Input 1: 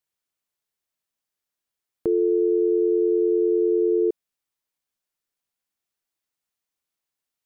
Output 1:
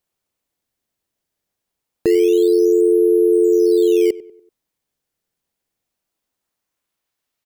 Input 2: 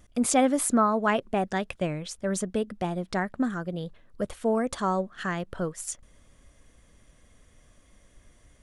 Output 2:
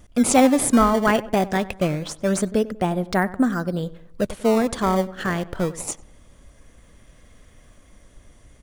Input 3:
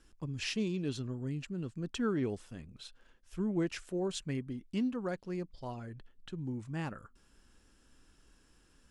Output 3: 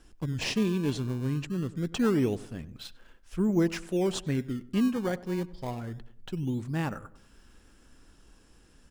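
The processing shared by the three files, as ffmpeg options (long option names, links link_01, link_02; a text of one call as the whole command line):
ffmpeg -i in.wav -filter_complex "[0:a]asplit=2[link_01][link_02];[link_02]acrusher=samples=19:mix=1:aa=0.000001:lfo=1:lforange=30.4:lforate=0.24,volume=-8dB[link_03];[link_01][link_03]amix=inputs=2:normalize=0,asplit=2[link_04][link_05];[link_05]adelay=96,lowpass=frequency=1700:poles=1,volume=-17dB,asplit=2[link_06][link_07];[link_07]adelay=96,lowpass=frequency=1700:poles=1,volume=0.43,asplit=2[link_08][link_09];[link_09]adelay=96,lowpass=frequency=1700:poles=1,volume=0.43,asplit=2[link_10][link_11];[link_11]adelay=96,lowpass=frequency=1700:poles=1,volume=0.43[link_12];[link_04][link_06][link_08][link_10][link_12]amix=inputs=5:normalize=0,volume=4.5dB" out.wav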